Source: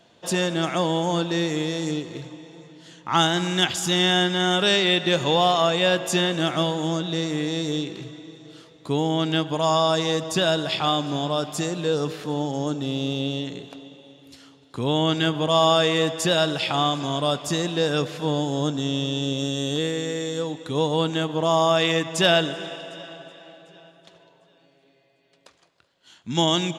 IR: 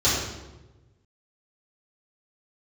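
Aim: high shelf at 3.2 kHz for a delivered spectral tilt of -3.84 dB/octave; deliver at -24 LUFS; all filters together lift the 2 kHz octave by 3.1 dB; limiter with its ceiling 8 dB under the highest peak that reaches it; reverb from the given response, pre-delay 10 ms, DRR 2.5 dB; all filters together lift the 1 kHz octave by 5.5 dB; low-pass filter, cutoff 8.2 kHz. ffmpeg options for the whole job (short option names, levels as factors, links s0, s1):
-filter_complex "[0:a]lowpass=8200,equalizer=f=1000:t=o:g=7,equalizer=f=2000:t=o:g=4.5,highshelf=f=3200:g=-8.5,alimiter=limit=0.266:level=0:latency=1,asplit=2[s0][s1];[1:a]atrim=start_sample=2205,adelay=10[s2];[s1][s2]afir=irnorm=-1:irlink=0,volume=0.112[s3];[s0][s3]amix=inputs=2:normalize=0,volume=0.668"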